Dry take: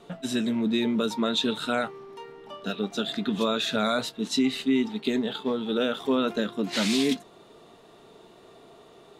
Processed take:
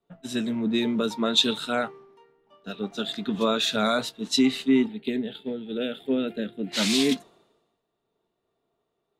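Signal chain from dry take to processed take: 4.86–6.72 s: static phaser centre 2.6 kHz, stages 4; three bands expanded up and down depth 100%

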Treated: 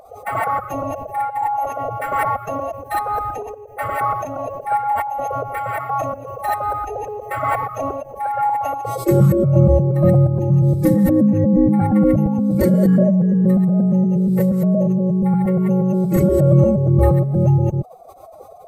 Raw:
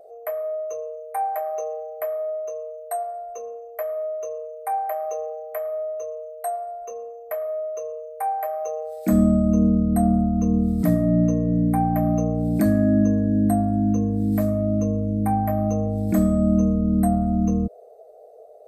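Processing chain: chunks repeated in reverse 118 ms, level 0 dB; formant-preserving pitch shift +10 st; trim +3.5 dB

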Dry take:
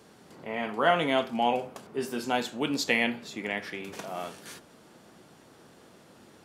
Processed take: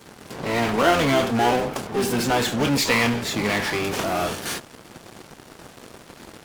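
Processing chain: in parallel at -11.5 dB: fuzz box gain 43 dB, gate -52 dBFS; on the sum: harmony voices -12 st -7 dB, +12 st -12 dB

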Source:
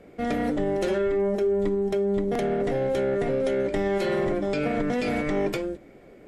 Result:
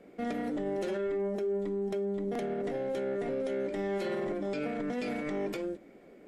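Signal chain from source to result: resonant low shelf 150 Hz -8 dB, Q 1.5; peak limiter -21 dBFS, peak gain reduction 7 dB; trim -5.5 dB

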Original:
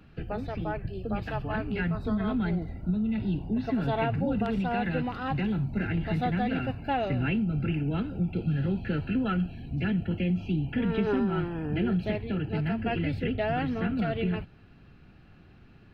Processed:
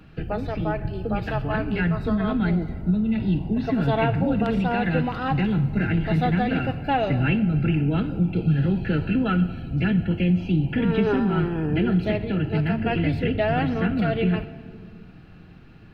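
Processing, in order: simulated room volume 3800 m³, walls mixed, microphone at 0.58 m; trim +5.5 dB

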